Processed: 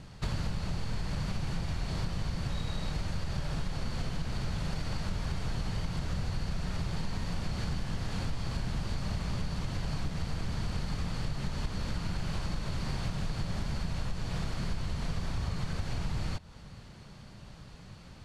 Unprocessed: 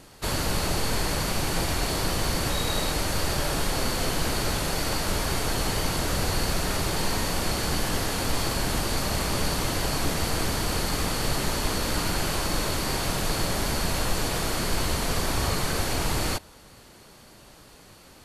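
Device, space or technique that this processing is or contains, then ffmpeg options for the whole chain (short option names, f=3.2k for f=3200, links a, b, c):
jukebox: -af "lowpass=5.6k,lowshelf=f=230:t=q:w=1.5:g=9,acompressor=threshold=-26dB:ratio=6,volume=-3.5dB"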